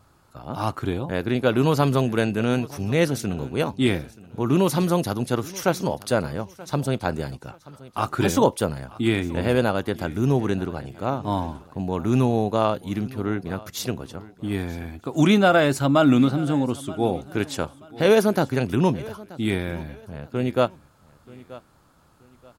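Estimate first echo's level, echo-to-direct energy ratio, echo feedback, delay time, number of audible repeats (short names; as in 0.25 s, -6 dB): -20.0 dB, -19.5 dB, 30%, 0.93 s, 2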